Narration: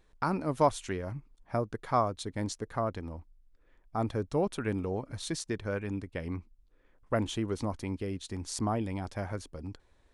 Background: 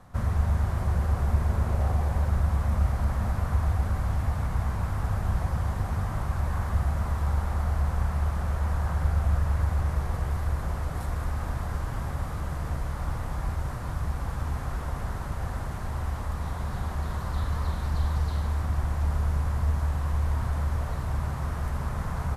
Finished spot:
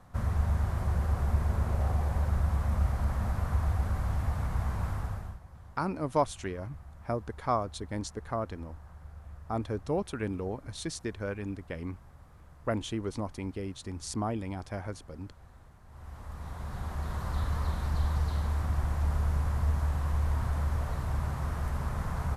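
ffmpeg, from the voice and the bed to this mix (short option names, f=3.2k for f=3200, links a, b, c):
-filter_complex "[0:a]adelay=5550,volume=-1.5dB[a];[1:a]volume=16.5dB,afade=t=out:st=4.89:d=0.5:silence=0.112202,afade=t=in:st=15.86:d=1.46:silence=0.1[b];[a][b]amix=inputs=2:normalize=0"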